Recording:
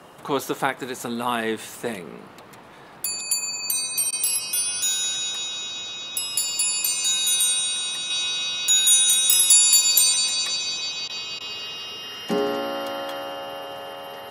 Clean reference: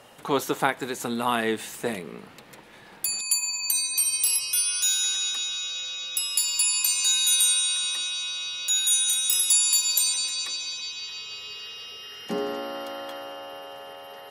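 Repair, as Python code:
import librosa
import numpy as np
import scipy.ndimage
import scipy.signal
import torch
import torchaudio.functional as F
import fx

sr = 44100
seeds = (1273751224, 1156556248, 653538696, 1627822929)

y = fx.fix_interpolate(x, sr, at_s=(4.11, 11.08, 11.39), length_ms=14.0)
y = fx.noise_reduce(y, sr, print_start_s=2.54, print_end_s=3.04, reduce_db=6.0)
y = fx.gain(y, sr, db=fx.steps((0.0, 0.0), (8.1, -5.5)))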